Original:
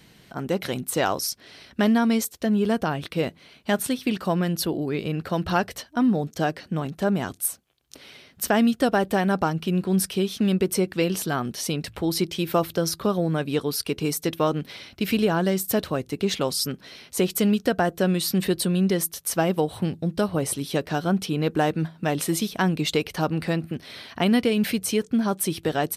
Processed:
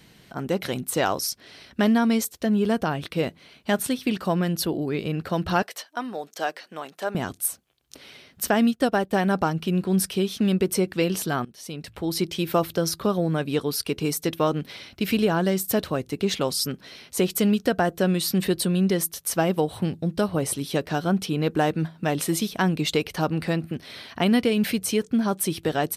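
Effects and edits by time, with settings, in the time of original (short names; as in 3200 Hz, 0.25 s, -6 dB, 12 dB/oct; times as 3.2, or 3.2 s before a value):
5.62–7.15 HPF 580 Hz
8.54–9.13 upward expander, over -40 dBFS
11.45–12.31 fade in, from -20.5 dB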